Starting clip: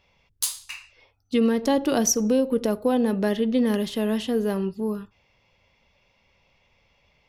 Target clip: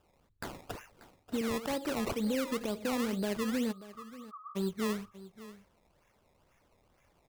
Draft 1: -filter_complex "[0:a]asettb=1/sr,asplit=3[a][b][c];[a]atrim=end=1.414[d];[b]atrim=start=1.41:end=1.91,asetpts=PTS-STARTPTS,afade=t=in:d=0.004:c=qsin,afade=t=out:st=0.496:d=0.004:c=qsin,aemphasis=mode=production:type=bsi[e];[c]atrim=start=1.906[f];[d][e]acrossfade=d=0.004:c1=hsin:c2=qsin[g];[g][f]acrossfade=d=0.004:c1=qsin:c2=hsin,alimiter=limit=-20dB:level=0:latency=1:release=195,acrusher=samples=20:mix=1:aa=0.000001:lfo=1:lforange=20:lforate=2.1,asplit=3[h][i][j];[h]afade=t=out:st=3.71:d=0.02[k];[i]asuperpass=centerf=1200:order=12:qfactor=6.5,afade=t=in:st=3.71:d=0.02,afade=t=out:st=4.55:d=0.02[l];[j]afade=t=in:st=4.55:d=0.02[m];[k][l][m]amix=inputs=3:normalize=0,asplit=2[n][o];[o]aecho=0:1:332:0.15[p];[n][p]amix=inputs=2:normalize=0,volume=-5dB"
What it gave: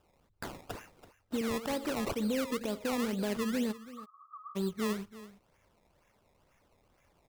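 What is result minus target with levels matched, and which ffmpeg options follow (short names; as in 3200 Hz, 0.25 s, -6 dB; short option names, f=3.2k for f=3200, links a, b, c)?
echo 0.254 s early
-filter_complex "[0:a]asettb=1/sr,asplit=3[a][b][c];[a]atrim=end=1.414[d];[b]atrim=start=1.41:end=1.91,asetpts=PTS-STARTPTS,afade=t=in:d=0.004:c=qsin,afade=t=out:st=0.496:d=0.004:c=qsin,aemphasis=mode=production:type=bsi[e];[c]atrim=start=1.906[f];[d][e]acrossfade=d=0.004:c1=hsin:c2=qsin[g];[g][f]acrossfade=d=0.004:c1=qsin:c2=hsin,alimiter=limit=-20dB:level=0:latency=1:release=195,acrusher=samples=20:mix=1:aa=0.000001:lfo=1:lforange=20:lforate=2.1,asplit=3[h][i][j];[h]afade=t=out:st=3.71:d=0.02[k];[i]asuperpass=centerf=1200:order=12:qfactor=6.5,afade=t=in:st=3.71:d=0.02,afade=t=out:st=4.55:d=0.02[l];[j]afade=t=in:st=4.55:d=0.02[m];[k][l][m]amix=inputs=3:normalize=0,asplit=2[n][o];[o]aecho=0:1:586:0.15[p];[n][p]amix=inputs=2:normalize=0,volume=-5dB"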